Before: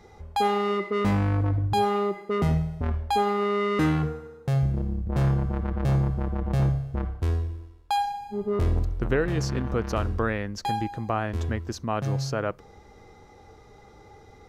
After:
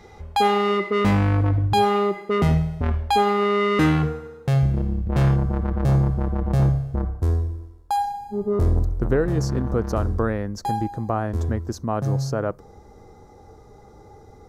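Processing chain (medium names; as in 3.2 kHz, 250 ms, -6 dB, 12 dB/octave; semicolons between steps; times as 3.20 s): peaking EQ 2.7 kHz +2.5 dB 1.4 oct, from 5.36 s -5.5 dB, from 6.96 s -14.5 dB; trim +4.5 dB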